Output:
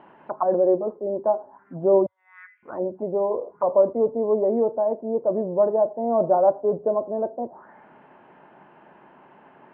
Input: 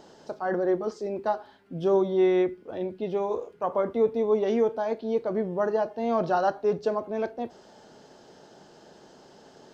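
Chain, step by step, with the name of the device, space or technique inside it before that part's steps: 2.06–2.63 s: steep high-pass 1.6 kHz 36 dB/octave; envelope filter bass rig (touch-sensitive low-pass 560–3100 Hz down, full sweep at -29 dBFS; cabinet simulation 78–2100 Hz, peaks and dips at 96 Hz -7 dB, 460 Hz -7 dB, 1 kHz +10 dB)

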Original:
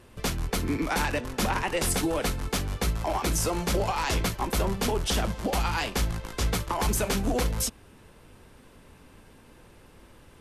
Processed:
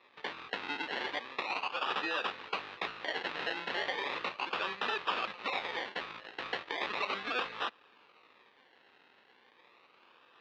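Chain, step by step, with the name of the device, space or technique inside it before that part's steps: 1.40–1.90 s: high-pass 610 Hz 12 dB/octave; circuit-bent sampling toy (decimation with a swept rate 29×, swing 60% 0.36 Hz; cabinet simulation 580–4200 Hz, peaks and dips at 650 Hz -5 dB, 1.2 kHz +6 dB, 1.8 kHz +5 dB, 2.6 kHz +8 dB, 3.8 kHz +7 dB); trim -5 dB

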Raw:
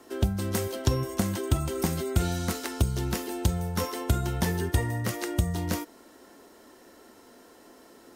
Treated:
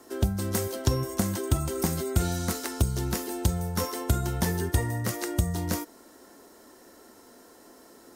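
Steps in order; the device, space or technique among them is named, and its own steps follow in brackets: exciter from parts (in parallel at -4 dB: high-pass 2.8 kHz 12 dB/octave + saturation -29.5 dBFS, distortion -13 dB + high-pass 2.2 kHz 12 dB/octave)

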